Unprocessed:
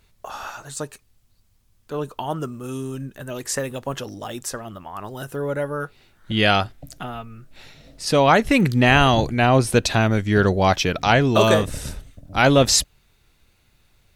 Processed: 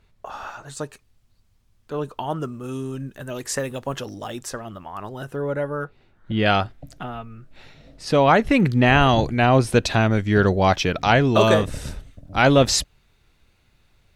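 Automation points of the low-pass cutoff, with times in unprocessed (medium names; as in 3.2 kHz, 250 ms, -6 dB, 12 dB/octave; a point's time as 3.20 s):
low-pass 6 dB/octave
2.3 kHz
from 0.68 s 4.6 kHz
from 3.06 s 9.1 kHz
from 4.31 s 5.5 kHz
from 5.09 s 2.7 kHz
from 5.84 s 1.1 kHz
from 6.46 s 2.7 kHz
from 9.09 s 4.8 kHz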